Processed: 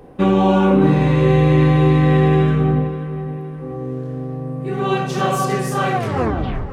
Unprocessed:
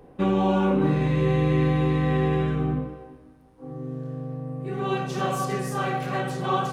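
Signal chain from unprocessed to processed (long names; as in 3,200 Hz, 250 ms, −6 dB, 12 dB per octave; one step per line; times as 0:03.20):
turntable brake at the end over 0.79 s
feedback echo with a low-pass in the loop 523 ms, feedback 58%, low-pass 2,600 Hz, level −13 dB
level +7.5 dB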